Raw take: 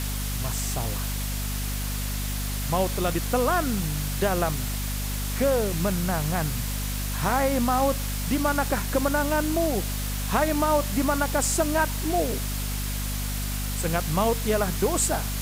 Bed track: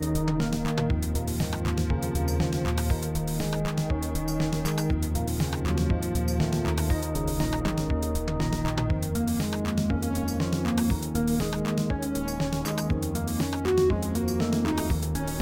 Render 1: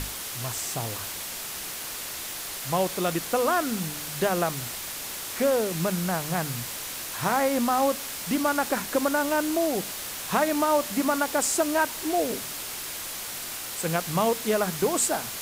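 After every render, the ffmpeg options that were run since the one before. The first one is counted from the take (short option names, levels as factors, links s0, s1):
-af "bandreject=f=50:t=h:w=6,bandreject=f=100:t=h:w=6,bandreject=f=150:t=h:w=6,bandreject=f=200:t=h:w=6,bandreject=f=250:t=h:w=6"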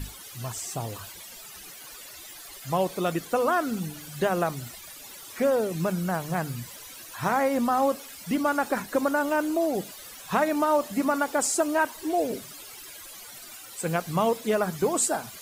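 -af "afftdn=nr=15:nf=-36"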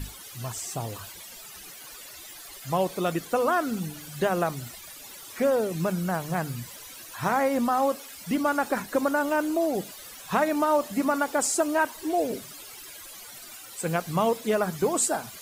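-filter_complex "[0:a]asettb=1/sr,asplit=3[s0][s1][s2];[s0]atrim=end=7.684[s3];[s1]atrim=start=7.68:end=8.16,asetpts=PTS-STARTPTS,afade=t=in:d=0.004:c=qsin,afade=t=out:st=0.476:d=0.004:c=qsin,lowshelf=f=180:g=-6.5[s4];[s2]atrim=start=8.156[s5];[s3][s4]acrossfade=d=0.004:c1=hsin:c2=qsin[s6];[s6][s5]acrossfade=d=0.004:c1=qsin:c2=hsin"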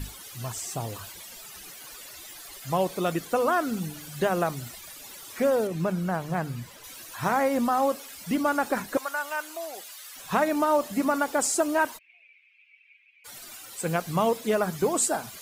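-filter_complex "[0:a]asettb=1/sr,asplit=3[s0][s1][s2];[s0]atrim=end=5.674[s3];[s1]atrim=start=5.67:end=6.84,asetpts=PTS-STARTPTS,afade=t=in:d=0.004:c=qsin,afade=t=out:st=1.166:d=0.004:c=qsin,highshelf=f=4200:g=-9[s4];[s2]atrim=start=6.836[s5];[s3][s4]acrossfade=d=0.004:c1=hsin:c2=qsin[s6];[s6][s5]acrossfade=d=0.004:c1=qsin:c2=hsin,asettb=1/sr,asplit=3[s7][s8][s9];[s7]atrim=end=8.974[s10];[s8]atrim=start=8.97:end=10.16,asetpts=PTS-STARTPTS,afade=t=in:d=0.004:c=qsin,afade=t=out:st=1.186:d=0.004:c=qsin,highpass=1100[s11];[s9]atrim=start=10.156[s12];[s10][s11]acrossfade=d=0.004:c1=hsin:c2=qsin[s13];[s13][s12]acrossfade=d=0.004:c1=qsin:c2=hsin,asplit=3[s14][s15][s16];[s14]afade=t=out:st=11.97:d=0.02[s17];[s15]asuperpass=centerf=2400:order=4:qfactor=6.1,afade=t=in:st=11.97:d=0.02,afade=t=out:st=13.24:d=0.02[s18];[s16]afade=t=in:st=13.24:d=0.02[s19];[s17][s18][s19]amix=inputs=3:normalize=0"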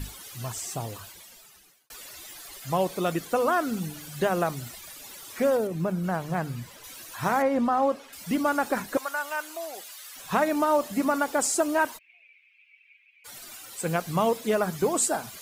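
-filter_complex "[0:a]asettb=1/sr,asplit=3[s0][s1][s2];[s0]atrim=end=5.574[s3];[s1]atrim=start=5.57:end=6.04,asetpts=PTS-STARTPTS,afade=t=in:d=0.004:c=qsin,afade=t=out:st=0.466:d=0.004:c=qsin,equalizer=f=3600:w=0.31:g=-5[s4];[s2]atrim=start=6.036[s5];[s3][s4]acrossfade=d=0.004:c1=hsin:c2=qsin[s6];[s6][s5]acrossfade=d=0.004:c1=qsin:c2=hsin,asettb=1/sr,asplit=3[s7][s8][s9];[s7]atrim=end=7.424[s10];[s8]atrim=start=7.42:end=8.13,asetpts=PTS-STARTPTS,afade=t=in:d=0.004:c=qsin,afade=t=out:st=0.706:d=0.004:c=qsin,aemphasis=mode=reproduction:type=75fm[s11];[s9]atrim=start=8.126[s12];[s10][s11]acrossfade=d=0.004:c1=hsin:c2=qsin[s13];[s13][s12]acrossfade=d=0.004:c1=qsin:c2=hsin,asplit=2[s14][s15];[s14]atrim=end=1.9,asetpts=PTS-STARTPTS,afade=t=out:st=0.71:d=1.19[s16];[s15]atrim=start=1.9,asetpts=PTS-STARTPTS,afade=t=in:d=0.004:c=hsin[s17];[s16][s17]concat=n=2:v=0:a=1"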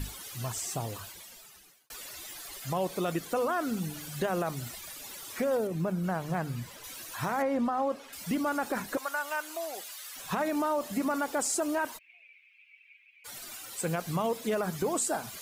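-af "alimiter=limit=0.126:level=0:latency=1:release=17,acompressor=threshold=0.0251:ratio=1.5"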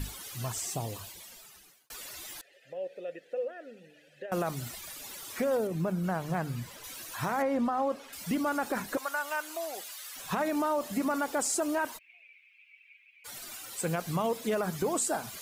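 -filter_complex "[0:a]asettb=1/sr,asplit=3[s0][s1][s2];[s0]atrim=end=0.704[s3];[s1]atrim=start=0.7:end=1.22,asetpts=PTS-STARTPTS,afade=t=in:d=0.004:c=qsin,afade=t=out:st=0.516:d=0.004:c=qsin,equalizer=f=1400:w=2.4:g=-7.5[s4];[s2]atrim=start=1.216[s5];[s3][s4]acrossfade=d=0.004:c1=hsin:c2=qsin[s6];[s6][s5]acrossfade=d=0.004:c1=qsin:c2=hsin,asettb=1/sr,asplit=3[s7][s8][s9];[s7]atrim=end=2.414[s10];[s8]atrim=start=2.41:end=4.32,asetpts=PTS-STARTPTS,afade=t=in:d=0.004:c=qsin,afade=t=out:st=1.906:d=0.004:c=qsin,asplit=3[s11][s12][s13];[s11]bandpass=f=530:t=q:w=8,volume=1[s14];[s12]bandpass=f=1840:t=q:w=8,volume=0.501[s15];[s13]bandpass=f=2480:t=q:w=8,volume=0.355[s16];[s14][s15][s16]amix=inputs=3:normalize=0[s17];[s9]atrim=start=4.316[s18];[s10][s17]acrossfade=d=0.004:c1=hsin:c2=qsin[s19];[s19][s18]acrossfade=d=0.004:c1=qsin:c2=hsin"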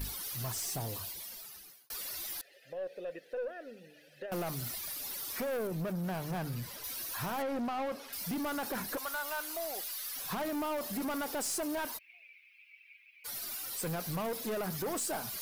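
-af "aexciter=amount=1.8:drive=1.9:freq=4200,aeval=exprs='(tanh(39.8*val(0)+0.1)-tanh(0.1))/39.8':c=same"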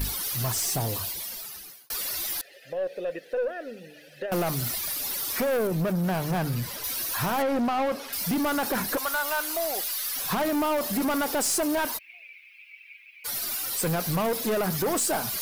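-af "volume=2.99"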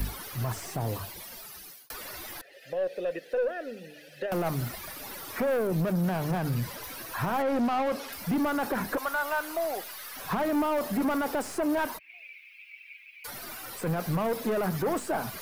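-filter_complex "[0:a]acrossover=split=210|670|2300[s0][s1][s2][s3];[s3]acompressor=threshold=0.00794:ratio=6[s4];[s0][s1][s2][s4]amix=inputs=4:normalize=0,alimiter=limit=0.1:level=0:latency=1"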